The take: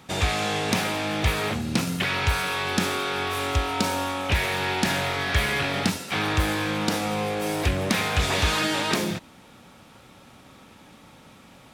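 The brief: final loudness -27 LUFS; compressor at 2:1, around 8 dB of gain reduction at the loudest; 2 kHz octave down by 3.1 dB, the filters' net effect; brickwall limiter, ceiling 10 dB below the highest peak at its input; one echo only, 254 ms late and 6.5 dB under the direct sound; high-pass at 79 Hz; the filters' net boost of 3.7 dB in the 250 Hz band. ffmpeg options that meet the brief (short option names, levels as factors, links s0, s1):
-af "highpass=79,equalizer=f=250:t=o:g=5,equalizer=f=2000:t=o:g=-4,acompressor=threshold=0.0282:ratio=2,alimiter=limit=0.0708:level=0:latency=1,aecho=1:1:254:0.473,volume=1.58"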